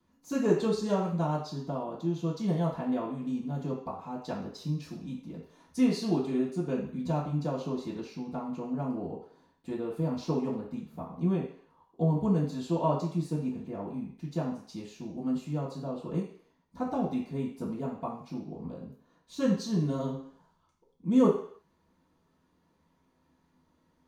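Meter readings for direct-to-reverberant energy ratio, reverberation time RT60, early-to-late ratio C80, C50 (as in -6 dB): -11.0 dB, 0.55 s, 9.0 dB, 5.5 dB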